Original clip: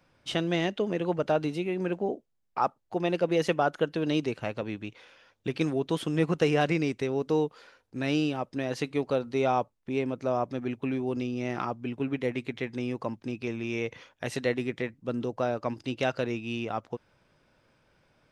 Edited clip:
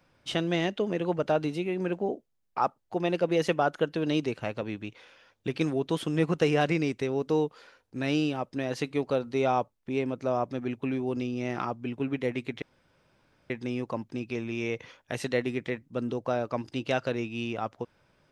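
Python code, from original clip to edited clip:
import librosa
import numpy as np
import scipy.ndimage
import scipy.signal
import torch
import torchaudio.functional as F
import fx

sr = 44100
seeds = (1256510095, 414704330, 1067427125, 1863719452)

y = fx.edit(x, sr, fx.insert_room_tone(at_s=12.62, length_s=0.88), tone=tone)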